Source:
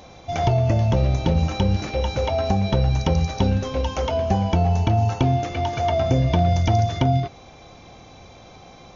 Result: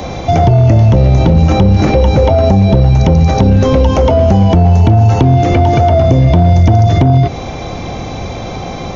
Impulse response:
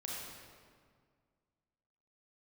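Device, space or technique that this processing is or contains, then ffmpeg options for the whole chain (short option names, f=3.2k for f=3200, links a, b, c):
mastering chain: -filter_complex "[0:a]equalizer=f=2k:t=o:w=0.23:g=3,acrossover=split=81|750|1700[a][b][c][d];[a]acompressor=threshold=-32dB:ratio=4[e];[b]acompressor=threshold=-23dB:ratio=4[f];[c]acompressor=threshold=-41dB:ratio=4[g];[d]acompressor=threshold=-43dB:ratio=4[h];[e][f][g][h]amix=inputs=4:normalize=0,acompressor=threshold=-23dB:ratio=2.5,asoftclip=type=tanh:threshold=-18dB,tiltshelf=f=760:g=3.5,asoftclip=type=hard:threshold=-18.5dB,alimiter=level_in=22.5dB:limit=-1dB:release=50:level=0:latency=1,volume=-1dB"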